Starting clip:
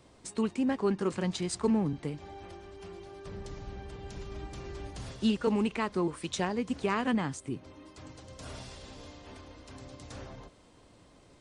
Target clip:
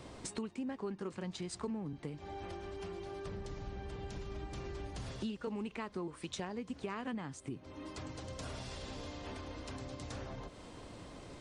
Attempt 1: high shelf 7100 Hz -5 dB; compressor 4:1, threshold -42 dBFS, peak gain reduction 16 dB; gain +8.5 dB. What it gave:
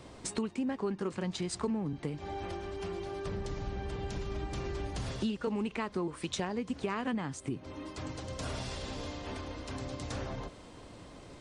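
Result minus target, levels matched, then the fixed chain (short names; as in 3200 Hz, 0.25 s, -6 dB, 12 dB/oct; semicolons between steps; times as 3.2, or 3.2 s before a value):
compressor: peak gain reduction -6.5 dB
high shelf 7100 Hz -5 dB; compressor 4:1, threshold -50.5 dBFS, peak gain reduction 22.5 dB; gain +8.5 dB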